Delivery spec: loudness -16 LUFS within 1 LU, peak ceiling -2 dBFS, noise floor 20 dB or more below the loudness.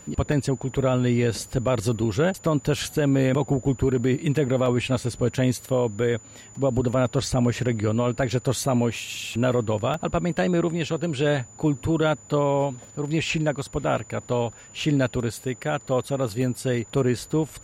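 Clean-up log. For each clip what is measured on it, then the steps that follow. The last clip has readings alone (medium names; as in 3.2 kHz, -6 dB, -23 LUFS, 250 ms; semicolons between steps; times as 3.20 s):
dropouts 4; longest dropout 2.0 ms; steady tone 7 kHz; tone level -46 dBFS; loudness -24.5 LUFS; peak level -12.5 dBFS; loudness target -16.0 LUFS
-> interpolate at 0.32/4.66/9.94/16.42 s, 2 ms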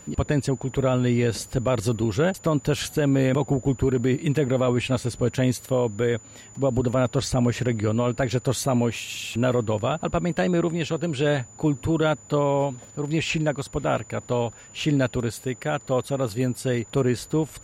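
dropouts 0; steady tone 7 kHz; tone level -46 dBFS
-> band-stop 7 kHz, Q 30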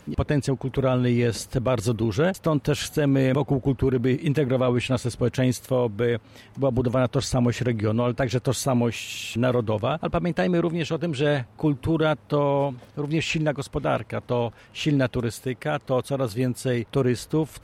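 steady tone not found; loudness -24.5 LUFS; peak level -12.5 dBFS; loudness target -16.0 LUFS
-> trim +8.5 dB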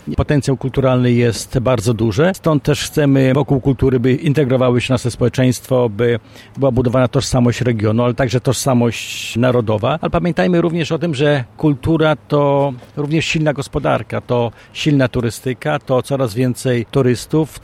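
loudness -16.0 LUFS; peak level -4.0 dBFS; noise floor -43 dBFS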